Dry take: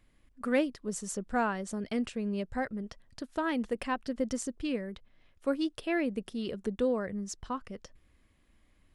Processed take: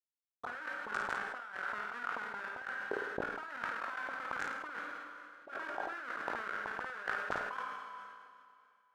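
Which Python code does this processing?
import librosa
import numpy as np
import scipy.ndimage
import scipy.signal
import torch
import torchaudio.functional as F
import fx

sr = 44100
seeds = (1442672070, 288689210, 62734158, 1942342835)

y = fx.highpass(x, sr, hz=94.0, slope=6)
y = fx.peak_eq(y, sr, hz=1200.0, db=8.0, octaves=2.4)
y = fx.schmitt(y, sr, flips_db=-29.0)
y = fx.auto_wah(y, sr, base_hz=240.0, top_hz=1500.0, q=5.7, full_db=-30.5, direction='up')
y = fx.low_shelf(y, sr, hz=180.0, db=-5.5)
y = fx.doubler(y, sr, ms=20.0, db=-12.0)
y = fx.rev_schroeder(y, sr, rt60_s=2.3, comb_ms=30, drr_db=15.5)
y = fx.over_compress(y, sr, threshold_db=-57.0, ratio=-1.0)
y = fx.room_flutter(y, sr, wall_m=9.1, rt60_s=0.4)
y = fx.sustainer(y, sr, db_per_s=34.0)
y = y * librosa.db_to_amplitude(14.0)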